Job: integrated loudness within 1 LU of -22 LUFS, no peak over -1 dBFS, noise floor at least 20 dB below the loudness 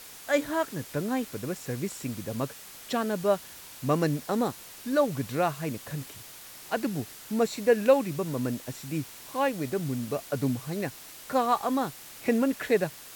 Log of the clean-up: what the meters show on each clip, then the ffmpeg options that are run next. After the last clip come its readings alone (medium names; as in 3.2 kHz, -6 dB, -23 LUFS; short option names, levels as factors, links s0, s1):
noise floor -46 dBFS; noise floor target -50 dBFS; loudness -29.5 LUFS; peak level -10.0 dBFS; loudness target -22.0 LUFS
-> -af "afftdn=nr=6:nf=-46"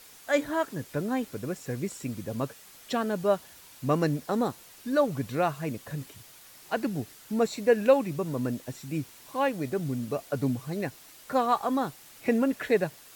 noise floor -52 dBFS; loudness -29.5 LUFS; peak level -10.0 dBFS; loudness target -22.0 LUFS
-> -af "volume=2.37"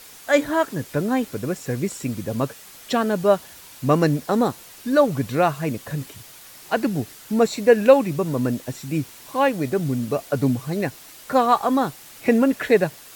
loudness -22.0 LUFS; peak level -2.5 dBFS; noise floor -44 dBFS